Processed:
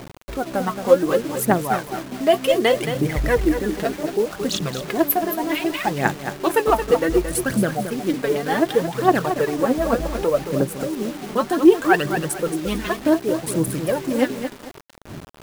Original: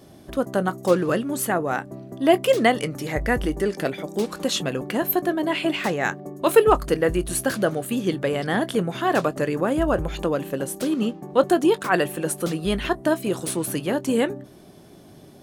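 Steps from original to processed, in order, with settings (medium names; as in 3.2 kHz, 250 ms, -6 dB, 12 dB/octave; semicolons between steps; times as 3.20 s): local Wiener filter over 15 samples; in parallel at -2 dB: compression 8:1, threshold -32 dBFS, peak gain reduction 22.5 dB; on the sum: phaser 0.66 Hz, delay 4.9 ms, feedback 72%; bit crusher 6-bit; bit-crushed delay 223 ms, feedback 35%, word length 5-bit, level -8 dB; trim -2 dB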